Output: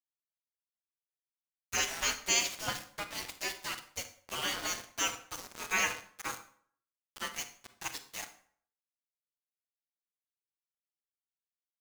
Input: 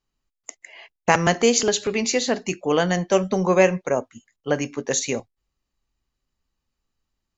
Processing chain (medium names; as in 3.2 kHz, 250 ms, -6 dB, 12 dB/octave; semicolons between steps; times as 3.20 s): spectral gate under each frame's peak -20 dB weak; time stretch by phase-locked vocoder 1.6×; small samples zeroed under -35 dBFS; on a send: reverberation RT60 0.55 s, pre-delay 28 ms, DRR 9 dB